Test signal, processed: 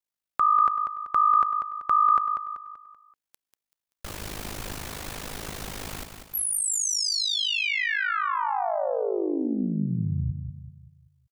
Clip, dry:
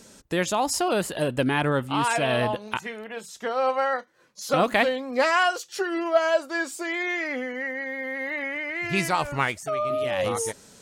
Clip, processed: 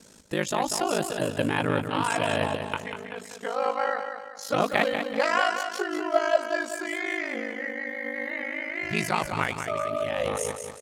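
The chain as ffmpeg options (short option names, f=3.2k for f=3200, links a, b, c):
-filter_complex "[0:a]aeval=exprs='val(0)*sin(2*PI*26*n/s)':c=same,asplit=2[a][b];[b]aecho=0:1:192|384|576|768|960:0.422|0.181|0.078|0.0335|0.0144[c];[a][c]amix=inputs=2:normalize=0"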